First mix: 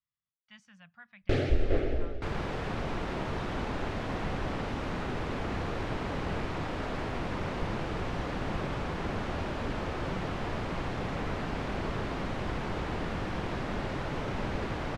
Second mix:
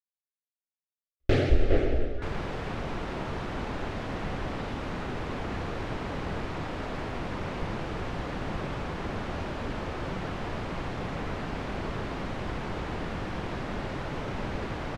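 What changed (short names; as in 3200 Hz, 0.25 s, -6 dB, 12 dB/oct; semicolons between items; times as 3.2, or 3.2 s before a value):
speech: entry +1.20 s; first sound +4.0 dB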